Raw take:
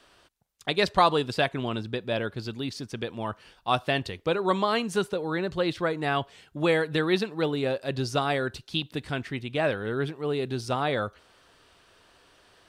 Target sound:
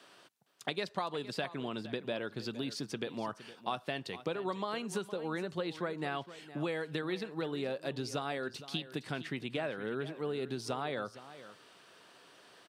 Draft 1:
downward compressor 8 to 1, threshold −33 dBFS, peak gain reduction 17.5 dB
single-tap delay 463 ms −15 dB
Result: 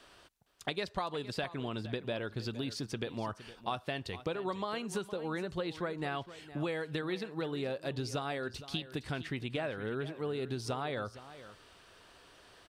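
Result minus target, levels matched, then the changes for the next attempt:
125 Hz band +3.0 dB
add after downward compressor: high-pass filter 140 Hz 24 dB per octave

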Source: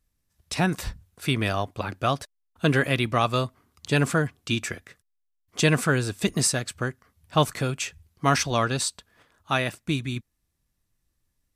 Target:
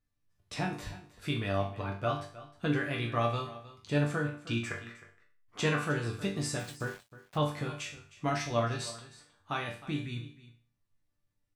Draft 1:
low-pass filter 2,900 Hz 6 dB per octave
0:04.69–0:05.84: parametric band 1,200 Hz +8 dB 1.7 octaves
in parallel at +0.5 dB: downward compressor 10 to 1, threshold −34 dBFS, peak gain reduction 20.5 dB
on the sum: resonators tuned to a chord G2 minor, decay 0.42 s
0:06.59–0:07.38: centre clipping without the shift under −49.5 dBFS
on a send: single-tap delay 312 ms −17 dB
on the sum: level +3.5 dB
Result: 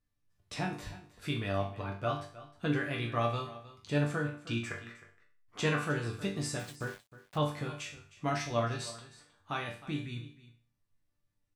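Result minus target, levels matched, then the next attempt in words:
downward compressor: peak gain reduction +6.5 dB
low-pass filter 2,900 Hz 6 dB per octave
0:04.69–0:05.84: parametric band 1,200 Hz +8 dB 1.7 octaves
in parallel at +0.5 dB: downward compressor 10 to 1, threshold −27 dBFS, peak gain reduction 14.5 dB
on the sum: resonators tuned to a chord G2 minor, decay 0.42 s
0:06.59–0:07.38: centre clipping without the shift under −49.5 dBFS
on a send: single-tap delay 312 ms −17 dB
on the sum: level +3.5 dB

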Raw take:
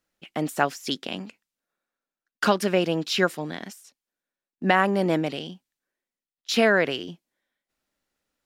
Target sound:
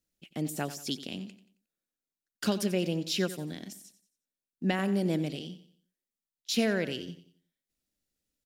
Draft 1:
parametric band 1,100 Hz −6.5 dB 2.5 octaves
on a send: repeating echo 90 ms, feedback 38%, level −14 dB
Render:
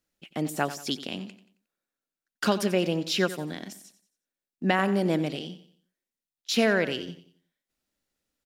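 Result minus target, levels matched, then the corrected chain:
1,000 Hz band +5.0 dB
parametric band 1,100 Hz −17.5 dB 2.5 octaves
on a send: repeating echo 90 ms, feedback 38%, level −14 dB

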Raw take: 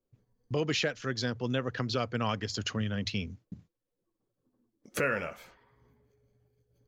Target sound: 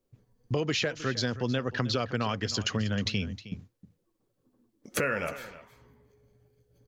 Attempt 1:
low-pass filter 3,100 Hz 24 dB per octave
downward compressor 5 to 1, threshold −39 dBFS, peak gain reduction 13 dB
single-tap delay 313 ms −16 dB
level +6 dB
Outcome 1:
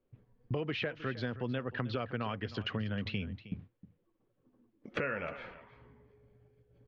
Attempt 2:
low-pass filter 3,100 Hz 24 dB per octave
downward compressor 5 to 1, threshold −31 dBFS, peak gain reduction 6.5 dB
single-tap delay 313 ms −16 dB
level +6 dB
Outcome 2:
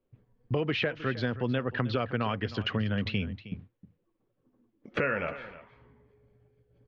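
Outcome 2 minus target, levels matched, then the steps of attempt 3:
4,000 Hz band −4.0 dB
downward compressor 5 to 1, threshold −31 dBFS, peak gain reduction 6.5 dB
single-tap delay 313 ms −16 dB
level +6 dB

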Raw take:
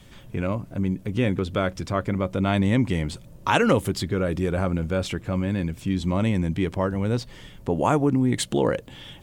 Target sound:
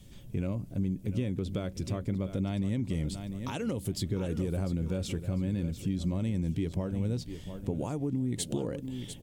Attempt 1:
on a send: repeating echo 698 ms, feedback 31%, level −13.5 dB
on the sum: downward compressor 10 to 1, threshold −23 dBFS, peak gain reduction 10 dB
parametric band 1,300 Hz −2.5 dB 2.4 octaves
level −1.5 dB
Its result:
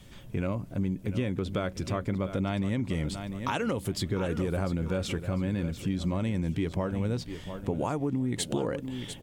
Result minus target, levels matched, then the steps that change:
1,000 Hz band +7.5 dB
change: parametric band 1,300 Hz −14 dB 2.4 octaves

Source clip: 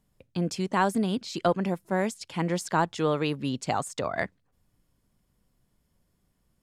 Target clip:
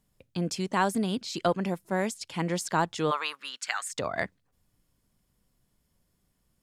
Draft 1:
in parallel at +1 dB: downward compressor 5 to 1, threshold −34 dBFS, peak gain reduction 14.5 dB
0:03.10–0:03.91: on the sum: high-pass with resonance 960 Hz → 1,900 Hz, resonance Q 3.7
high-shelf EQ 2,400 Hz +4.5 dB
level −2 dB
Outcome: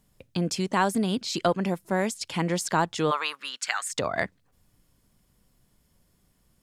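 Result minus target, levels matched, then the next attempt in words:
downward compressor: peak gain reduction +14.5 dB
0:03.10–0:03.91: high-pass with resonance 960 Hz → 1,900 Hz, resonance Q 3.7
high-shelf EQ 2,400 Hz +4.5 dB
level −2 dB

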